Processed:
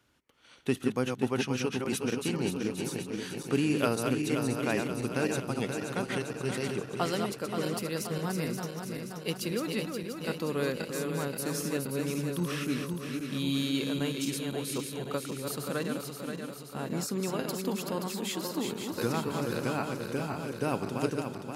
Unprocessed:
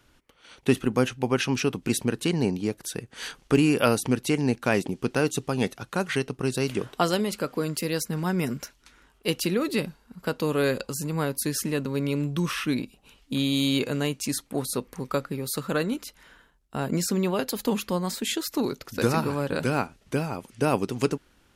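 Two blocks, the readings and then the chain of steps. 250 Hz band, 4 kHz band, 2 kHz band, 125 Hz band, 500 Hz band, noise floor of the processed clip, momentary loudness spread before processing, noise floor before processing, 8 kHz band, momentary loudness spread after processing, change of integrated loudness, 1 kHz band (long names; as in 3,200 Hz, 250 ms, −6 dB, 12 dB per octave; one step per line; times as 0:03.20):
−5.0 dB, −5.0 dB, −5.0 dB, −5.5 dB, −5.0 dB, −44 dBFS, 8 LU, −62 dBFS, −5.0 dB, 6 LU, −5.5 dB, −5.0 dB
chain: feedback delay that plays each chunk backwards 264 ms, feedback 76%, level −5 dB
high-pass filter 75 Hz
level −7.5 dB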